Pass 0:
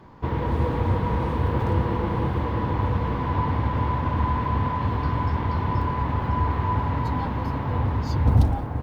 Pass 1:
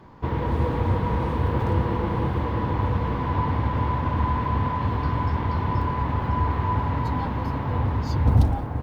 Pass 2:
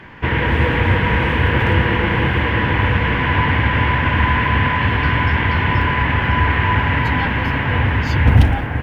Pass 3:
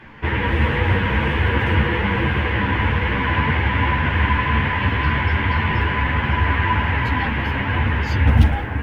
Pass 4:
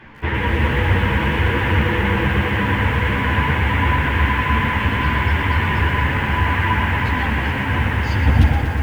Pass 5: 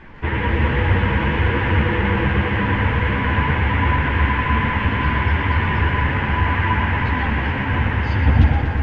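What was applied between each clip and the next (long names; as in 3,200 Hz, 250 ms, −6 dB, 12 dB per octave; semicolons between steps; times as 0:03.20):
no processing that can be heard
flat-topped bell 2,200 Hz +15.5 dB 1.3 octaves; level +6.5 dB
string-ensemble chorus
tape delay 311 ms, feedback 83%, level −19 dB, low-pass 2,300 Hz; feedback echo at a low word length 120 ms, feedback 80%, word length 7 bits, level −9 dB
background noise brown −40 dBFS; high-frequency loss of the air 170 metres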